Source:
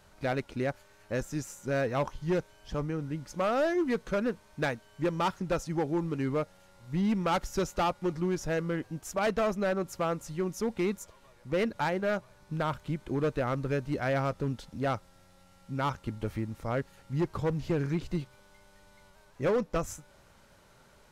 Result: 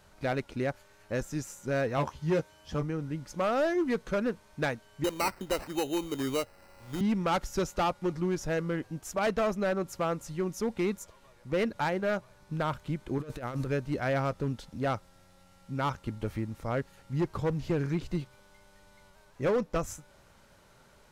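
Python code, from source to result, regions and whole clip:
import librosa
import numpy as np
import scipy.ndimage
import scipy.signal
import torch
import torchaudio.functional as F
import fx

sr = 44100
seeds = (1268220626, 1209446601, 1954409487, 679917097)

y = fx.chain(x, sr, fx.highpass(hz=52.0, slope=12),
    fx.doubler(ms=13.0, db=-5), at=(1.97, 2.83))
y = fx.chain(y, sr, fx.peak_eq(hz=160.0, db=-14.5, octaves=0.51),
    fx.sample_hold(seeds[0], rate_hz=3400.0, jitter_pct=0),
    fx.band_squash(depth_pct=40), at=(5.04, 7.01))
y = fx.chain(y, sr, fx.high_shelf(hz=5900.0, db=8.0),
    fx.over_compress(threshold_db=-34.0, ratio=-0.5), at=(13.18, 13.67))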